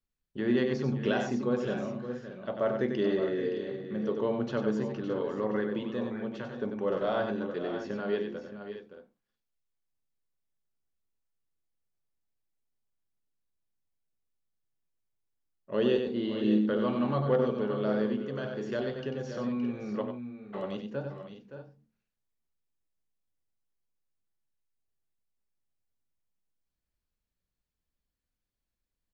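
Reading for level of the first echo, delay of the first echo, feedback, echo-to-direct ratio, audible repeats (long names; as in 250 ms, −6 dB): −6.5 dB, 94 ms, repeats not evenly spaced, −4.5 dB, 3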